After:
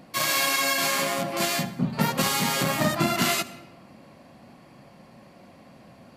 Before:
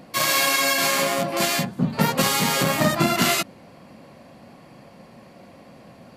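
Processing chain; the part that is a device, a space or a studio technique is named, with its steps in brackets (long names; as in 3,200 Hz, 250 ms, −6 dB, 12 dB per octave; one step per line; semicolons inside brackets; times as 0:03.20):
compressed reverb return (on a send at −11.5 dB: convolution reverb RT60 0.95 s, pre-delay 64 ms + downward compressor, threshold −22 dBFS, peak gain reduction 7 dB)
on the sum: parametric band 480 Hz −3.5 dB 0.36 octaves
level −3.5 dB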